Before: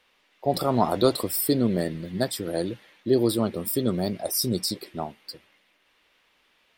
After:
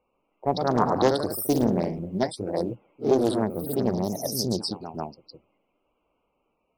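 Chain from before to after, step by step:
adaptive Wiener filter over 25 samples
spectral peaks only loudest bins 64
floating-point word with a short mantissa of 6 bits
delay with pitch and tempo change per echo 137 ms, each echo +1 semitone, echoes 3, each echo −6 dB
highs frequency-modulated by the lows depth 0.52 ms

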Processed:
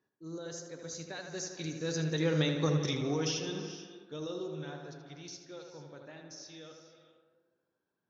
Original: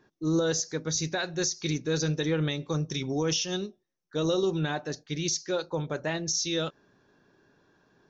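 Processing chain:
source passing by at 0:02.60, 10 m/s, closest 3.4 metres
high-pass filter 72 Hz
tape delay 79 ms, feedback 73%, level −5 dB, low-pass 2,800 Hz
reverb whose tail is shaped and stops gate 480 ms rising, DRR 11.5 dB

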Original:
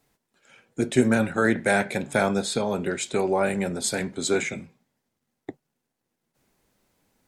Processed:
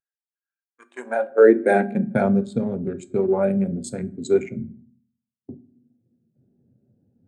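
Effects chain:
adaptive Wiener filter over 41 samples
noise gate −38 dBFS, range −10 dB
reversed playback
upward compression, threshold −29 dBFS
reversed playback
high-pass filter sweep 1,600 Hz → 110 Hz, 0:00.67–0:02.27
on a send at −9 dB: convolution reverb RT60 0.75 s, pre-delay 4 ms
on the sum: every bin expanded away from the loudest bin 1.5 to 1
level +4 dB

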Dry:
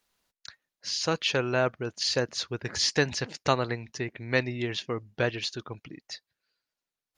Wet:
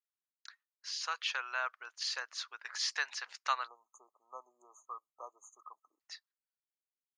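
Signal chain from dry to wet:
four-pole ladder high-pass 980 Hz, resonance 45%
noise gate with hold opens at −52 dBFS
time-frequency box erased 0:03.67–0:06.01, 1,300–6,200 Hz

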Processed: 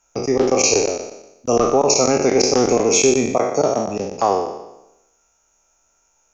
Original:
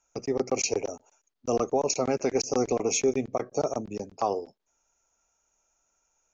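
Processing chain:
peak hold with a decay on every bin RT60 0.90 s
0:03.36–0:03.88: high-pass filter 110 Hz
level +8 dB

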